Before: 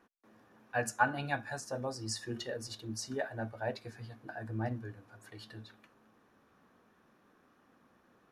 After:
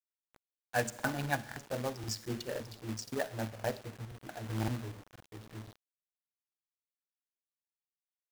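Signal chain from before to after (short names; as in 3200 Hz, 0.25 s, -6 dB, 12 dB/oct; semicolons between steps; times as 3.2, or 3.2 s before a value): Wiener smoothing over 41 samples; steep low-pass 8300 Hz; Schroeder reverb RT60 0.83 s, DRR 18 dB; companded quantiser 4-bit; crackling interface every 0.52 s, samples 2048, repeat, from 0.43; gain +2 dB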